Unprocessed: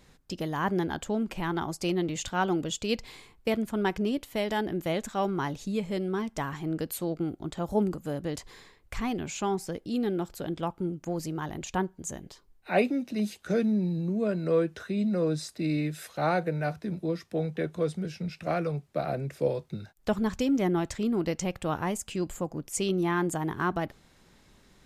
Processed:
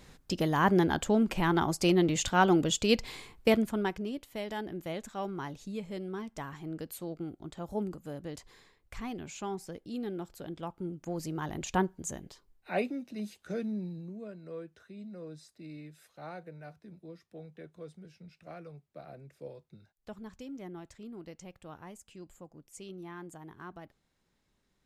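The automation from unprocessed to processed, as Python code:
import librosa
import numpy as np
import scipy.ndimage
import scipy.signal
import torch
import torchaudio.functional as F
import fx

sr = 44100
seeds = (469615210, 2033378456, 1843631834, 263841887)

y = fx.gain(x, sr, db=fx.line((3.52, 3.5), (4.03, -8.0), (10.63, -8.0), (11.79, 1.0), (13.07, -9.0), (13.79, -9.0), (14.37, -17.5)))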